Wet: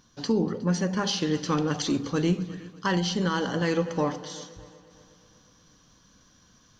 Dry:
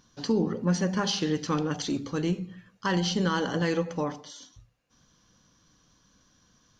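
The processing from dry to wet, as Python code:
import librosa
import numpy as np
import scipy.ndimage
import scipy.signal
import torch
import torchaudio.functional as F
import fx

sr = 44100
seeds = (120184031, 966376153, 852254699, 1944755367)

y = fx.echo_heads(x, sr, ms=121, heads='second and third', feedback_pct=48, wet_db=-21.0)
y = fx.rider(y, sr, range_db=3, speed_s=0.5)
y = y * librosa.db_to_amplitude(1.5)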